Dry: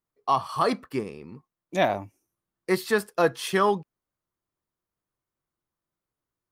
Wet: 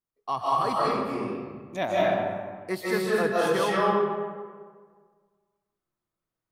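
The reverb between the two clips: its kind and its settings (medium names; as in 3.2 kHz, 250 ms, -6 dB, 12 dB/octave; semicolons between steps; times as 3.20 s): algorithmic reverb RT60 1.7 s, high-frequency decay 0.55×, pre-delay 115 ms, DRR -6.5 dB; trim -7 dB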